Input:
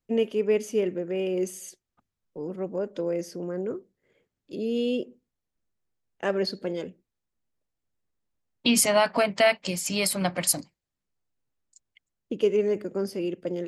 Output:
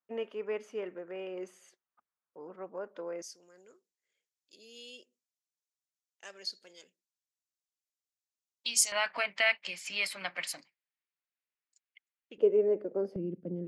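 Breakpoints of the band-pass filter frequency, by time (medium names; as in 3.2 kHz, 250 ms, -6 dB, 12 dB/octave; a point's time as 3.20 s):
band-pass filter, Q 1.6
1.2 kHz
from 3.22 s 6.4 kHz
from 8.92 s 2.2 kHz
from 12.38 s 540 Hz
from 13.16 s 180 Hz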